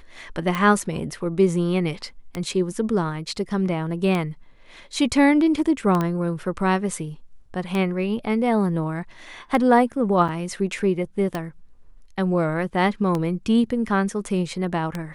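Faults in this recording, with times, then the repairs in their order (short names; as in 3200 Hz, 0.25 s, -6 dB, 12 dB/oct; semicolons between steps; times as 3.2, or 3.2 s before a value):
tick 33 1/3 rpm -12 dBFS
6.01 pop -12 dBFS
10.28–10.29 gap 6.2 ms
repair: de-click; interpolate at 10.28, 6.2 ms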